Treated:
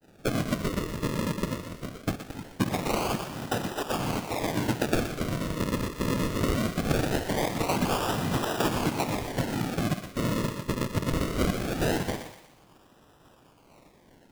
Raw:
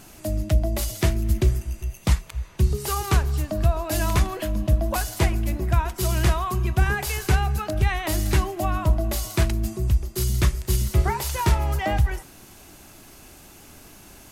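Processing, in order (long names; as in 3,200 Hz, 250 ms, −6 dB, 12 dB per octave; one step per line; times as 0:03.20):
spectral magnitudes quantised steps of 15 dB
downward expander −37 dBFS
parametric band 2,500 Hz +10 dB 0.63 octaves
in parallel at 0 dB: downward compressor, threshold −27 dBFS, peak gain reduction 13 dB
on the sum: brickwall limiter −13 dBFS, peak gain reduction 8.5 dB
0:03.10–0:04.30: output level in coarse steps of 12 dB
cochlear-implant simulation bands 4
sample-and-hold swept by an LFO 39×, swing 100% 0.21 Hz
feedback echo with a high-pass in the loop 121 ms, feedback 46%, high-pass 810 Hz, level −8.5 dB
level −2 dB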